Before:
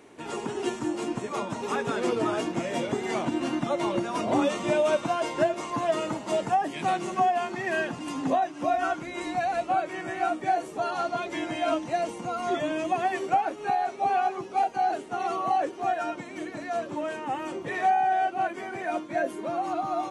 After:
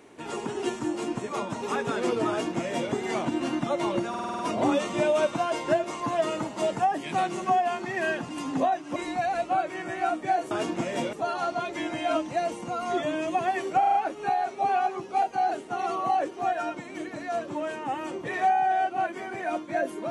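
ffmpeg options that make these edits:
-filter_complex "[0:a]asplit=14[a][b][c][d][e][f][g][h][i][j][k][l][m][n];[a]atrim=end=4.142[o];[b]atrim=start=4.088:end=4.142[p];[c]atrim=start=4.088:end=4.142[q];[d]atrim=start=4.088:end=4.142[r];[e]atrim=start=4.088:end=4.142[s];[f]atrim=start=4.088:end=4.142[t];[g]atrim=start=4.088:end=8.662[u];[h]atrim=start=9.148:end=10.702[v];[i]atrim=start=2.288:end=2.912[w];[j]atrim=start=10.698:end=13.402[x];[k]atrim=start=13.358:end=13.402[y];[l]atrim=start=13.358:end=13.402[z];[m]atrim=start=13.358:end=13.402[aa];[n]atrim=start=13.358[ab];[o][p]acrossfade=d=0.004:c1=hsin:c2=hsin[ac];[ac][q]acrossfade=d=0.004:c1=hsin:c2=hsin[ad];[ad][r]acrossfade=d=0.004:c1=hsin:c2=hsin[ae];[ae][s]acrossfade=d=0.004:c1=hsin:c2=hsin[af];[af][t]acrossfade=d=0.004:c1=hsin:c2=hsin[ag];[ag][u]acrossfade=d=0.004:c1=hsin:c2=hsin[ah];[ah][v]acrossfade=d=0.004:c1=hsin:c2=hsin[ai];[ai][w]acrossfade=d=0.004:c1=hsin:c2=hsin[aj];[aj][x]acrossfade=d=0.004:c1=hsin:c2=hsin[ak];[ak][y]acrossfade=d=0.004:c1=hsin:c2=hsin[al];[al][z]acrossfade=d=0.004:c1=hsin:c2=hsin[am];[am][aa]acrossfade=d=0.004:c1=hsin:c2=hsin[an];[an][ab]acrossfade=d=0.004:c1=hsin:c2=hsin"

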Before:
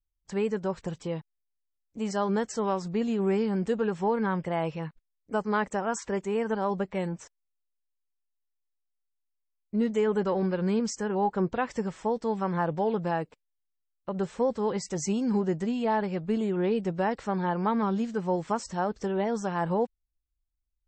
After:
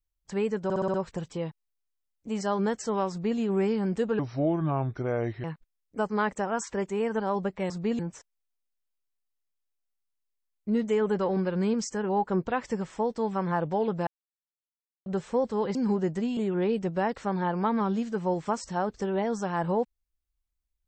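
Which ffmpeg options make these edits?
-filter_complex "[0:a]asplit=14[a][b][c][d][e][f][g][h][i][j][k][l][m][n];[a]atrim=end=0.702[o];[b]atrim=start=0.638:end=0.702[p];[c]atrim=start=0.638:end=0.702[q];[d]atrim=start=0.638:end=0.702[r];[e]atrim=start=0.638:end=0.702[s];[f]atrim=start=0.638:end=3.894[t];[g]atrim=start=3.89:end=4.79,asetpts=PTS-STARTPTS,asetrate=31752,aresample=44100[u];[h]atrim=start=4.786:end=7.052[v];[i]atrim=start=2.798:end=3.092[w];[j]atrim=start=7.048:end=13.13,asetpts=PTS-STARTPTS,afade=t=out:st=6.078:d=0.004:c=hsin[x];[k]atrim=start=13.13:end=14.12,asetpts=PTS-STARTPTS,volume=0[y];[l]atrim=start=14.12:end=14.812,asetpts=PTS-STARTPTS,afade=t=in:d=0.004:c=hsin[z];[m]atrim=start=15.198:end=15.822[aa];[n]atrim=start=16.388[ab];[o][p]acrossfade=d=0.004:c1=hsin:c2=hsin[ac];[ac][q]acrossfade=d=0.004:c1=hsin:c2=hsin[ad];[ad][r]acrossfade=d=0.004:c1=hsin:c2=hsin[ae];[ae][s]acrossfade=d=0.004:c1=hsin:c2=hsin[af];[af][t]acrossfade=d=0.004:c1=hsin:c2=hsin[ag];[ag][u]acrossfade=d=0.004:c1=hsin:c2=hsin[ah];[ah][v]acrossfade=d=0.004:c1=hsin:c2=hsin[ai];[ai][w]acrossfade=d=0.004:c1=hsin:c2=hsin[aj];[x][y][z]concat=n=3:v=0:a=1[ak];[aj][ak]acrossfade=d=0.004:c1=hsin:c2=hsin[al];[al][aa]acrossfade=d=0.004:c1=hsin:c2=hsin[am];[am][ab]acrossfade=d=0.004:c1=hsin:c2=hsin"

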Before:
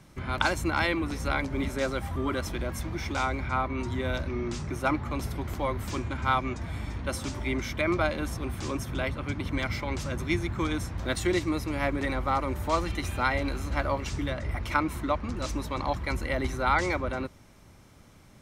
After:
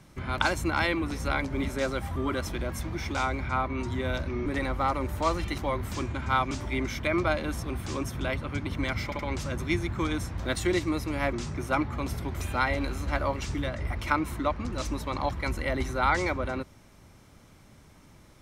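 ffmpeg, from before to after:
-filter_complex "[0:a]asplit=8[a][b][c][d][e][f][g][h];[a]atrim=end=4.462[i];[b]atrim=start=11.928:end=13.052[j];[c]atrim=start=5.538:end=6.472[k];[d]atrim=start=7.248:end=9.862[l];[e]atrim=start=9.788:end=9.862[m];[f]atrim=start=9.788:end=11.932[n];[g]atrim=start=4.458:end=5.542[o];[h]atrim=start=13.048[p];[i][j]acrossfade=d=0.004:c1=hsin:c2=hsin[q];[q][k]acrossfade=d=0.004:c1=hsin:c2=hsin[r];[r][l]acrossfade=d=0.004:c1=hsin:c2=hsin[s];[s][m]acrossfade=d=0.004:c1=hsin:c2=hsin[t];[t][n]acrossfade=d=0.004:c1=hsin:c2=hsin[u];[u][o]acrossfade=d=0.004:c1=hsin:c2=hsin[v];[v][p]acrossfade=d=0.004:c1=hsin:c2=hsin"

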